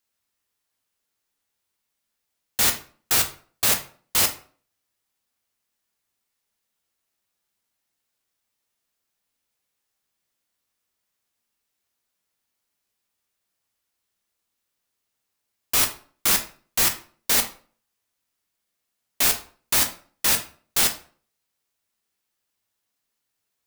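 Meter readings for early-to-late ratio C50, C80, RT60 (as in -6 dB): 11.5 dB, 17.5 dB, 0.45 s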